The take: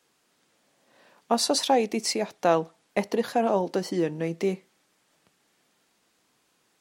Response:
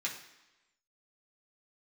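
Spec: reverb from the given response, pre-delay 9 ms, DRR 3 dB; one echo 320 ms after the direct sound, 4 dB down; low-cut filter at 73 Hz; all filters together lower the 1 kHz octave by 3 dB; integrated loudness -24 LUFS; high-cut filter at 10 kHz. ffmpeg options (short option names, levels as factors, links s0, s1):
-filter_complex "[0:a]highpass=73,lowpass=10000,equalizer=f=1000:t=o:g=-4.5,aecho=1:1:320:0.631,asplit=2[s0][s1];[1:a]atrim=start_sample=2205,adelay=9[s2];[s1][s2]afir=irnorm=-1:irlink=0,volume=0.501[s3];[s0][s3]amix=inputs=2:normalize=0,volume=1.12"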